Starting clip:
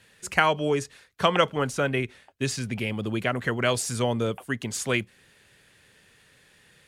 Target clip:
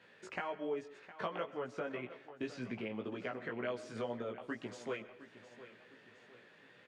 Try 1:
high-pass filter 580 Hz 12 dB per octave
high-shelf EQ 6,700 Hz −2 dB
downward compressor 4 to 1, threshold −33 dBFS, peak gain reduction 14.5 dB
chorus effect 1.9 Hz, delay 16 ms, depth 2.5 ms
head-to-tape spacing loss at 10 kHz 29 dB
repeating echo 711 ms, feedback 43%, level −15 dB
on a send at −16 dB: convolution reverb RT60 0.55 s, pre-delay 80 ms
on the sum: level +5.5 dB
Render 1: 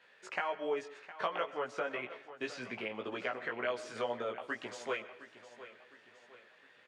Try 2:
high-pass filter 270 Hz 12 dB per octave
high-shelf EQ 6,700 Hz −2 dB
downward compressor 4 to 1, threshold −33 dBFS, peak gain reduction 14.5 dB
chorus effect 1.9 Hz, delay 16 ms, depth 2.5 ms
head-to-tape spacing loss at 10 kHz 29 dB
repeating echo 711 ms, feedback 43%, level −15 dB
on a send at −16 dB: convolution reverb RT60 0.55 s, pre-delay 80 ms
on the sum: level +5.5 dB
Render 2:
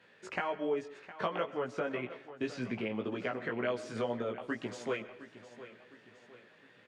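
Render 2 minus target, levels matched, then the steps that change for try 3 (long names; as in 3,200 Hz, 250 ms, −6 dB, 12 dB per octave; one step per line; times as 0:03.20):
downward compressor: peak gain reduction −5 dB
change: downward compressor 4 to 1, threshold −40 dBFS, peak gain reduction 20 dB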